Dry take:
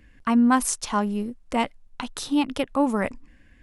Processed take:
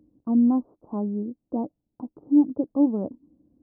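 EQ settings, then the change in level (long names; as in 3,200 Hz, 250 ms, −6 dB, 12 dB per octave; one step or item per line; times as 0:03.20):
Gaussian smoothing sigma 14 samples
high-pass filter 150 Hz 12 dB per octave
parametric band 310 Hz +10 dB 0.25 octaves
0.0 dB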